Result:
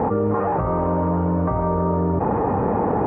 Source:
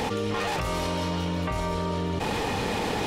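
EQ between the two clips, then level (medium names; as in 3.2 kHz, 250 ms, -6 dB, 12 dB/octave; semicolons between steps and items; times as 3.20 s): high-pass 65 Hz; inverse Chebyshev low-pass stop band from 4 kHz, stop band 60 dB; +8.5 dB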